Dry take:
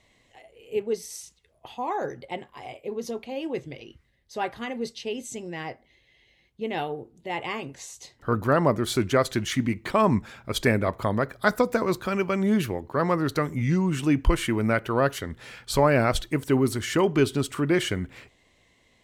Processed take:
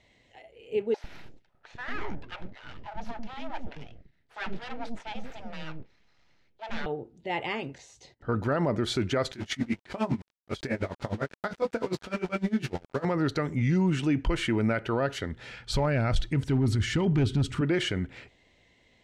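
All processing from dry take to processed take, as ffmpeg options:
ffmpeg -i in.wav -filter_complex "[0:a]asettb=1/sr,asplit=3[link_01][link_02][link_03];[link_01]atrim=end=0.944[link_04];[link_02]atrim=start=0.94:end=6.86,asetpts=PTS-STARTPTS,afade=type=in:duration=0.004:curve=qsin,afade=type=out:start_time=5.916:duration=0.004:curve=qsin,aeval=exprs='abs(val(0))':channel_layout=same,lowpass=frequency=3100:poles=1,acrossover=split=500[link_05][link_06];[link_05]adelay=100[link_07];[link_07][link_06]amix=inputs=2:normalize=0,atrim=end_sample=261072[link_08];[link_03]atrim=start=6.856[link_09];[link_04][link_08]acrossfade=duration=0.004:curve1=hsin:curve2=qsin[link_10];[link_10][link_09]acrossfade=duration=0.004:curve1=qsin:curve2=hsin,asettb=1/sr,asplit=3[link_11][link_12][link_13];[link_11]atrim=end=7.784[link_14];[link_12]atrim=start=7.78:end=8.29,asetpts=PTS-STARTPTS,afade=type=in:duration=0.004:curve=qsin,afade=type=out:start_time=0.506:duration=0.004:curve=qsin,tiltshelf=frequency=1300:gain=4,acompressor=threshold=-51dB:ratio=1.5:attack=3.2:release=140:knee=1:detection=peak,agate=range=-21dB:threshold=-59dB:ratio=16:release=100:detection=peak[link_15];[link_13]atrim=start=8.286[link_16];[link_14][link_15]acrossfade=duration=0.004:curve1=hsin:curve2=qsin[link_17];[link_17][link_16]acrossfade=duration=0.004:curve1=qsin:curve2=hsin,asettb=1/sr,asplit=3[link_18][link_19][link_20];[link_18]atrim=end=9.324[link_21];[link_19]atrim=start=9.32:end=13.05,asetpts=PTS-STARTPTS,afade=type=in:duration=0.004:curve=qsin,afade=type=out:start_time=3.726:duration=0.004:curve=qsin,aeval=exprs='val(0)*gte(abs(val(0)),0.0211)':channel_layout=same,asplit=2[link_22][link_23];[link_23]adelay=22,volume=-3dB[link_24];[link_22][link_24]amix=inputs=2:normalize=0,atrim=end_sample=164493,aeval=exprs='val(0)*pow(10,-24*(0.5-0.5*cos(2*PI*9.9*n/s))/20)':channel_layout=same[link_25];[link_20]atrim=start=13.046[link_26];[link_21][link_25]acrossfade=duration=0.004:curve1=hsin:curve2=qsin[link_27];[link_27][link_26]acrossfade=duration=0.004:curve1=qsin:curve2=hsin,asettb=1/sr,asplit=3[link_28][link_29][link_30];[link_28]atrim=end=15.314[link_31];[link_29]atrim=start=15.31:end=17.61,asetpts=PTS-STARTPTS,afade=type=in:duration=0.004:curve=qsin,afade=type=out:start_time=2.296:duration=0.004:curve=qsin,asubboost=boost=9:cutoff=200,volume=11dB,asoftclip=hard,volume=-11dB[link_32];[link_30]atrim=start=17.606[link_33];[link_31][link_32]acrossfade=duration=0.004:curve1=hsin:curve2=qsin[link_34];[link_34][link_33]acrossfade=duration=0.004:curve1=qsin:curve2=hsin,lowpass=5500,bandreject=frequency=1100:width=6.7,alimiter=limit=-18dB:level=0:latency=1:release=29" out.wav

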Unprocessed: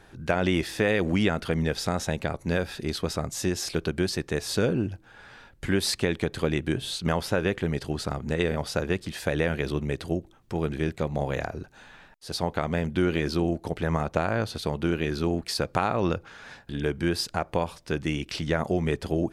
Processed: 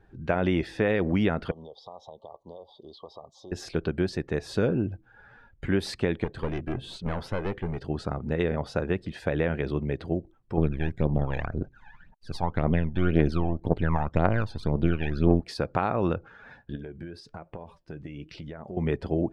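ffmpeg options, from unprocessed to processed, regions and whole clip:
ffmpeg -i in.wav -filter_complex "[0:a]asettb=1/sr,asplit=3[link_01][link_02][link_03];[link_01]atrim=end=1.514[link_04];[link_02]atrim=start=1.51:end=3.52,asetpts=PTS-STARTPTS,afade=type=in:duration=0.004:curve=qsin,afade=type=out:start_time=2.006:duration=0.004:curve=qsin,acrossover=split=510 4300:gain=0.1 1 0.126[link_05][link_06][link_07];[link_05][link_06][link_07]amix=inputs=3:normalize=0,acompressor=threshold=-38dB:ratio=3:attack=3.2:release=140:knee=1:detection=peak,asuperstop=centerf=1900:order=20:qfactor=1[link_08];[link_03]atrim=start=3.516[link_09];[link_04][link_08]acrossfade=duration=0.004:curve1=hsin:curve2=qsin[link_10];[link_10][link_09]acrossfade=duration=0.004:curve1=qsin:curve2=hsin,asettb=1/sr,asplit=3[link_11][link_12][link_13];[link_11]atrim=end=6.244[link_14];[link_12]atrim=start=6.24:end=7.84,asetpts=PTS-STARTPTS,afade=type=in:duration=0.004:curve=qsin,afade=type=out:start_time=1.596:duration=0.004:curve=qsin,agate=range=-33dB:threshold=-37dB:ratio=3:release=100:detection=peak,aeval=exprs='clip(val(0),-1,0.0211)':channel_layout=same[link_15];[link_13]atrim=start=7.836[link_16];[link_14][link_15]acrossfade=duration=0.004:curve1=hsin:curve2=qsin[link_17];[link_17][link_16]acrossfade=duration=0.004:curve1=qsin:curve2=hsin,asettb=1/sr,asplit=3[link_18][link_19][link_20];[link_18]atrim=end=10.574[link_21];[link_19]atrim=start=10.57:end=15.4,asetpts=PTS-STARTPTS,afade=type=in:duration=0.004:curve=qsin,afade=type=out:start_time=4.826:duration=0.004:curve=qsin,aeval=exprs='if(lt(val(0),0),0.447*val(0),val(0))':channel_layout=same,aphaser=in_gain=1:out_gain=1:delay=1.3:decay=0.65:speed=1.9:type=triangular[link_22];[link_20]atrim=start=15.396[link_23];[link_21][link_22]acrossfade=duration=0.004:curve1=hsin:curve2=qsin[link_24];[link_24][link_23]acrossfade=duration=0.004:curve1=qsin:curve2=hsin,asettb=1/sr,asplit=3[link_25][link_26][link_27];[link_25]atrim=end=16.754[link_28];[link_26]atrim=start=16.75:end=18.77,asetpts=PTS-STARTPTS,afade=type=in:duration=0.004:curve=qsin,afade=type=out:start_time=2.016:duration=0.004:curve=qsin,acompressor=threshold=-29dB:ratio=10:attack=3.2:release=140:knee=1:detection=peak,flanger=delay=4.4:depth=3.1:regen=80:speed=1.1:shape=triangular[link_29];[link_27]atrim=start=18.766[link_30];[link_28][link_29]acrossfade=duration=0.004:curve1=hsin:curve2=qsin[link_31];[link_31][link_30]acrossfade=duration=0.004:curve1=qsin:curve2=hsin,afftdn=noise_reduction=12:noise_floor=-47,lowpass=frequency=1700:poles=1" out.wav

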